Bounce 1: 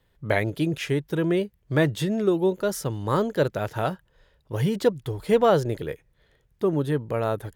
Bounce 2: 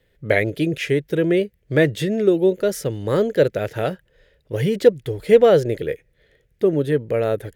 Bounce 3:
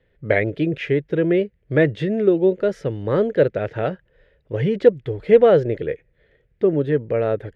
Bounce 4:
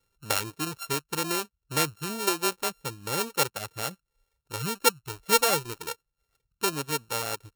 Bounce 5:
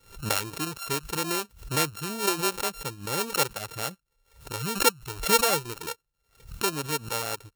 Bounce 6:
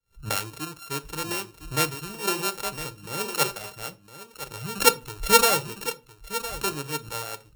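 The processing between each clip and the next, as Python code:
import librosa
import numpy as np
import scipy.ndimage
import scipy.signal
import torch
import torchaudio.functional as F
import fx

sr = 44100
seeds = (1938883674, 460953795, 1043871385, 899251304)

y1 = fx.graphic_eq(x, sr, hz=(500, 1000, 2000), db=(9, -12, 8))
y1 = y1 * librosa.db_to_amplitude(1.5)
y2 = scipy.signal.sosfilt(scipy.signal.butter(2, 2500.0, 'lowpass', fs=sr, output='sos'), y1)
y3 = np.r_[np.sort(y2[:len(y2) // 32 * 32].reshape(-1, 32), axis=1).ravel(), y2[len(y2) // 32 * 32:]]
y3 = fx.dereverb_blind(y3, sr, rt60_s=0.68)
y3 = fx.high_shelf(y3, sr, hz=3000.0, db=11.0)
y3 = y3 * librosa.db_to_amplitude(-12.5)
y4 = fx.pre_swell(y3, sr, db_per_s=130.0)
y5 = y4 + 10.0 ** (-8.0 / 20.0) * np.pad(y4, (int(1009 * sr / 1000.0), 0))[:len(y4)]
y5 = fx.room_shoebox(y5, sr, seeds[0], volume_m3=260.0, walls='furnished', distance_m=0.49)
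y5 = fx.band_widen(y5, sr, depth_pct=70)
y5 = y5 * librosa.db_to_amplitude(-2.0)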